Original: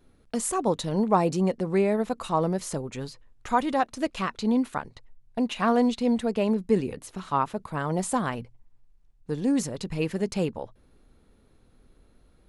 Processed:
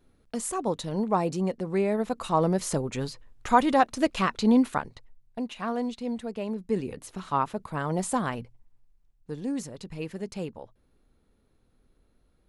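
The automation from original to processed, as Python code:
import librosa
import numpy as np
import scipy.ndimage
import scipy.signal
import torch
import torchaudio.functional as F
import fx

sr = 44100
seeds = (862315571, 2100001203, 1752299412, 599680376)

y = fx.gain(x, sr, db=fx.line((1.69, -3.5), (2.74, 3.5), (4.7, 3.5), (5.54, -8.0), (6.51, -8.0), (7.03, -1.0), (8.39, -1.0), (9.63, -7.5)))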